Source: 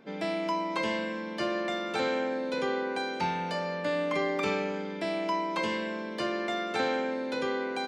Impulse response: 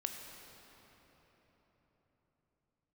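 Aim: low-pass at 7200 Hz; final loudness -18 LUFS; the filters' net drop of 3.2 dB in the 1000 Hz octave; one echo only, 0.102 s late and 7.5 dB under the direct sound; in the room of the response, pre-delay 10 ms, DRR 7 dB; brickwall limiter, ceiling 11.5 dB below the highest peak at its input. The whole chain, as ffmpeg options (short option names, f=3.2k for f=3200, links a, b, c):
-filter_complex "[0:a]lowpass=7.2k,equalizer=f=1k:t=o:g=-4,alimiter=level_in=5dB:limit=-24dB:level=0:latency=1,volume=-5dB,aecho=1:1:102:0.422,asplit=2[a][b];[1:a]atrim=start_sample=2205,adelay=10[c];[b][c]afir=irnorm=-1:irlink=0,volume=-7dB[d];[a][d]amix=inputs=2:normalize=0,volume=17dB"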